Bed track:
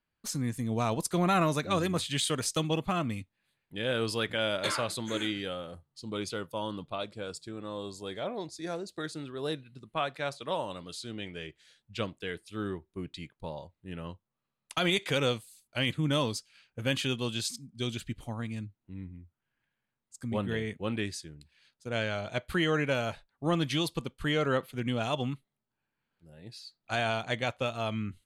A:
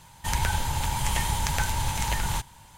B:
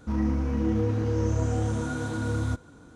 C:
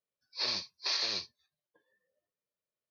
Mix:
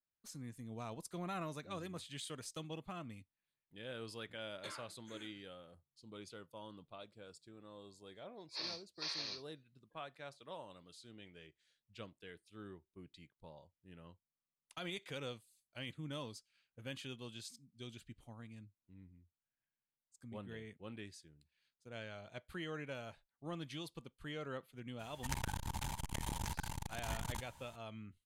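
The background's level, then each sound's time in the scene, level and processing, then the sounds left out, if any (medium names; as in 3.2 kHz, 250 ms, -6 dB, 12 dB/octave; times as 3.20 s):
bed track -16.5 dB
8.16 s: add C -10 dB
24.99 s: add A -10 dB + transformer saturation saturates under 720 Hz
not used: B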